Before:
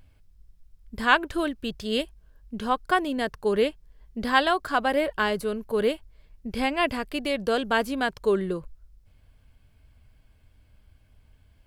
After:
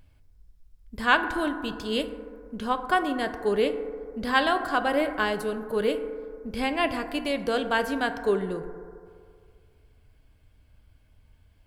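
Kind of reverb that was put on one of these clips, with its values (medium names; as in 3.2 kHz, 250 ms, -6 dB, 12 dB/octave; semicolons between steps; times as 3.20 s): FDN reverb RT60 2.2 s, low-frequency decay 0.8×, high-frequency decay 0.25×, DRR 8 dB; trim -1.5 dB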